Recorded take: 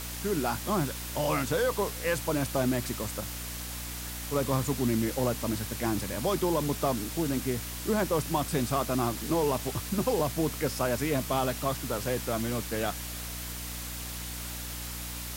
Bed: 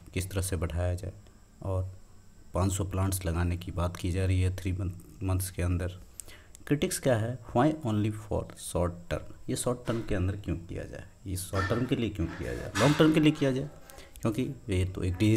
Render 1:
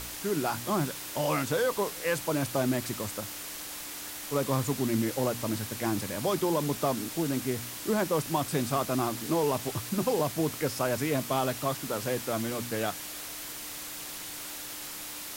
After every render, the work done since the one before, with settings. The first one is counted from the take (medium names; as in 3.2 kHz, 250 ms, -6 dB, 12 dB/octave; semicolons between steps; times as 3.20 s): de-hum 60 Hz, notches 4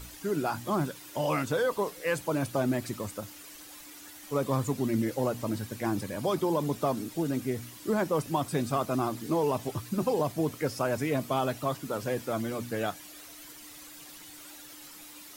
noise reduction 11 dB, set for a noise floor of -40 dBFS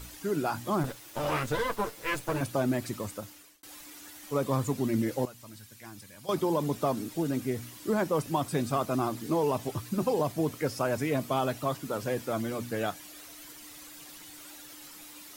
0.83–2.41 s: comb filter that takes the minimum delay 8.9 ms; 2.97–3.63 s: fade out equal-power; 5.25–6.29 s: amplifier tone stack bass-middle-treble 5-5-5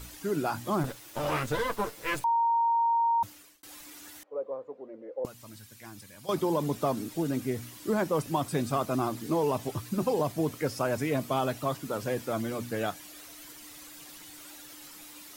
2.24–3.23 s: bleep 928 Hz -22 dBFS; 4.23–5.25 s: ladder band-pass 550 Hz, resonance 70%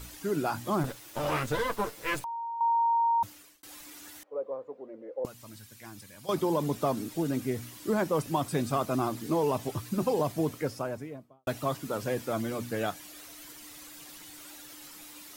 2.19–2.61 s: compression, threshold -35 dBFS; 10.38–11.47 s: studio fade out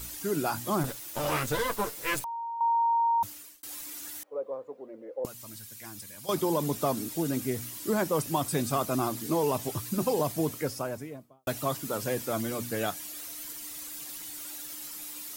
treble shelf 5.5 kHz +10.5 dB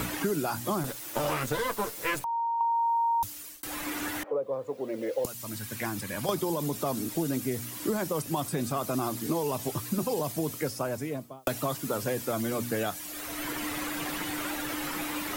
peak limiter -19 dBFS, peak gain reduction 5 dB; three bands compressed up and down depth 100%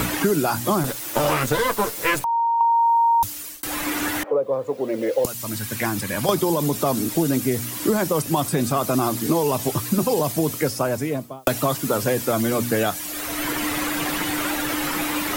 trim +9 dB